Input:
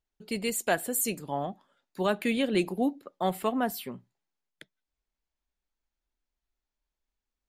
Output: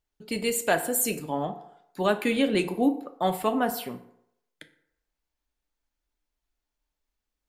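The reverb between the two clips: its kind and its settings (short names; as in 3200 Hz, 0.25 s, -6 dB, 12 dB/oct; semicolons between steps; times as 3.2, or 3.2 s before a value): FDN reverb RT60 0.76 s, low-frequency decay 0.75×, high-frequency decay 0.55×, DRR 7 dB; gain +2.5 dB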